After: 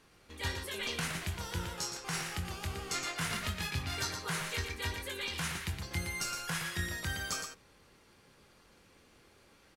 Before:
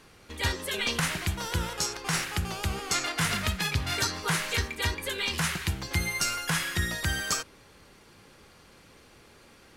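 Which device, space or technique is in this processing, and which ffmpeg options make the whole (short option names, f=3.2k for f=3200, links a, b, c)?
slapback doubling: -filter_complex "[0:a]asplit=3[a][b][c];[b]adelay=23,volume=-8dB[d];[c]adelay=117,volume=-6dB[e];[a][d][e]amix=inputs=3:normalize=0,volume=-9dB"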